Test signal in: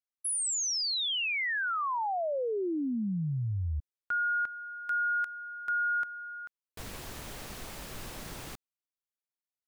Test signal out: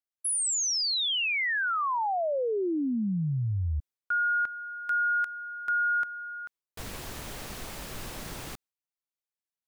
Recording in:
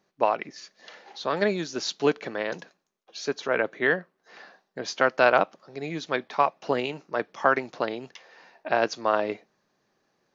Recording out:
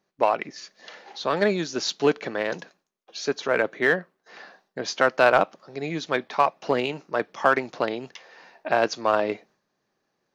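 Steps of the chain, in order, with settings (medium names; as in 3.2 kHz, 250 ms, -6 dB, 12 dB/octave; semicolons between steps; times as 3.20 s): gate with hold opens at -54 dBFS, hold 71 ms, range -7 dB; in parallel at -7.5 dB: overload inside the chain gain 20 dB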